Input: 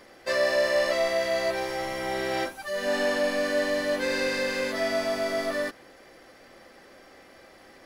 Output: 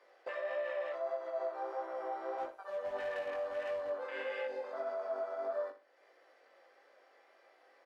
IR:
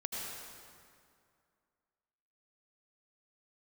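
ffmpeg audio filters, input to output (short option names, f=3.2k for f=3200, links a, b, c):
-filter_complex "[0:a]lowpass=f=1.9k:p=1,afwtdn=0.0316,highpass=f=450:w=0.5412,highpass=f=450:w=1.3066,alimiter=limit=-24dB:level=0:latency=1:release=46,acompressor=threshold=-53dB:ratio=2,asettb=1/sr,asplit=3[a][b][c];[a]atrim=end=2.384[d];[b]atrim=start=2.38:end=3.9,asetpts=PTS-STARTPTS,afade=t=in:d=0.004:c=qsin,afade=t=out:st=1.516:d=0.004:c=qsin,asoftclip=type=hard:threshold=-40dB[e];[c]atrim=start=3.896[f];[d][e]acrossfade=d=0.004:c1=hsin:c2=qsin[g];[g][f]acrossfade=d=0.004:c1=qsin:c2=hsin,flanger=delay=18.5:depth=3.5:speed=1.6,aecho=1:1:60|120|180:0.266|0.0718|0.0194,volume=9dB"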